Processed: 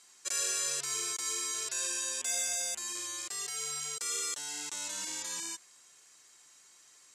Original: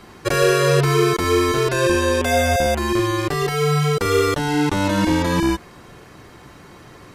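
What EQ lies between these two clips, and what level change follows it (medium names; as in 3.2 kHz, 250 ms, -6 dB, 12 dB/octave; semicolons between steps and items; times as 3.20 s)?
band-pass filter 7.4 kHz, Q 3.6; +4.0 dB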